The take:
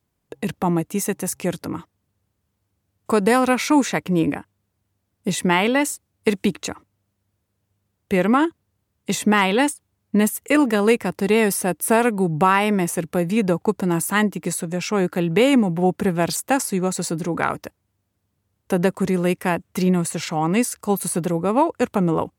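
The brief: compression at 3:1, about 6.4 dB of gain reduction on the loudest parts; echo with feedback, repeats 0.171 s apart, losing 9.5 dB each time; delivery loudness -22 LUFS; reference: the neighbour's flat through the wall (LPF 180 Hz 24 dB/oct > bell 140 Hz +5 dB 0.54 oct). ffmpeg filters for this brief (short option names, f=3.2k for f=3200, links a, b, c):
-af "acompressor=threshold=-21dB:ratio=3,lowpass=f=180:w=0.5412,lowpass=f=180:w=1.3066,equalizer=f=140:t=o:w=0.54:g=5,aecho=1:1:171|342|513|684:0.335|0.111|0.0365|0.012,volume=10dB"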